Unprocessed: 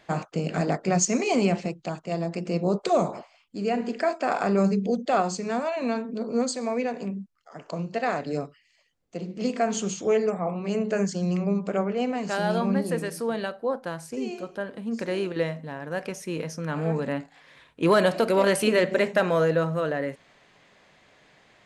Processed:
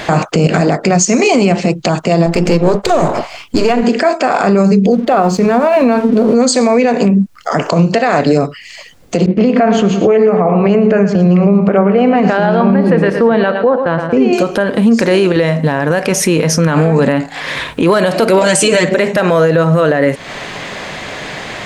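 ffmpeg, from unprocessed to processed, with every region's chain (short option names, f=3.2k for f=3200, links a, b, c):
-filter_complex "[0:a]asettb=1/sr,asplit=3[a][b][c];[a]atrim=end=2.264[d];[b]atrim=start=2.26:end=3.83,asetpts=PTS-STARTPTS,afade=t=in:d=0.004:c=qsin,afade=t=out:st=1.566:d=0.004:c=qsin,aeval=exprs='if(lt(val(0),0),0.447*val(0),val(0))':c=same,bandreject=f=200:w=6.6[e];[c]atrim=start=3.826[f];[d][e]acrossfade=d=0.004:c1=hsin:c2=qsin[g];[g][f]acrossfade=d=0.004:c1=qsin:c2=hsin,asettb=1/sr,asplit=3[h][i][j];[h]atrim=end=4.924[k];[i]atrim=start=4.92:end=6.35,asetpts=PTS-STARTPTS,afade=t=in:d=0.004:c=qsin,afade=t=out:st=1.426:d=0.004:c=qsin,lowpass=f=1.5k:p=1,bandreject=f=111.5:t=h:w=4,bandreject=f=223:t=h:w=4,bandreject=f=334.5:t=h:w=4,bandreject=f=446:t=h:w=4,aeval=exprs='sgn(val(0))*max(abs(val(0))-0.00188,0)':c=same[l];[j]atrim=start=6.346[m];[k][l]acrossfade=d=0.004:c1=hsin:c2=qsin[n];[n][m]acrossfade=d=0.004:c1=qsin:c2=hsin,asettb=1/sr,asplit=3[o][p][q];[o]atrim=end=9.264[r];[p]atrim=start=9.26:end=14.33,asetpts=PTS-STARTPTS,afade=t=in:d=0.004:c=qsin,afade=t=out:st=5.066:d=0.004:c=qsin,lowpass=2.3k,agate=range=-33dB:threshold=-36dB:ratio=3:release=100:detection=peak,aecho=1:1:113|226|339|452:0.224|0.0918|0.0376|0.0154,atrim=end_sample=223587[s];[q]atrim=start=14.326[t];[r][s]acrossfade=d=0.004:c1=hsin:c2=qsin[u];[u][t]acrossfade=d=0.004:c1=qsin:c2=hsin,asettb=1/sr,asplit=3[v][w][x];[v]atrim=end=18.414[y];[w]atrim=start=18.41:end=18.89,asetpts=PTS-STARTPTS,afade=t=in:d=0.004:c=qsin,afade=t=out:st=0.476:d=0.004:c=qsin,lowpass=f=7.5k:t=q:w=4.9,aecho=1:1:6.4:0.8,atrim=end_sample=21168[z];[x]atrim=start=18.886[aa];[y][z]acrossfade=d=0.004:c1=hsin:c2=qsin[ab];[ab][aa]acrossfade=d=0.004:c1=qsin:c2=hsin,acompressor=threshold=-40dB:ratio=4,alimiter=level_in=34dB:limit=-1dB:release=50:level=0:latency=1,volume=-1dB"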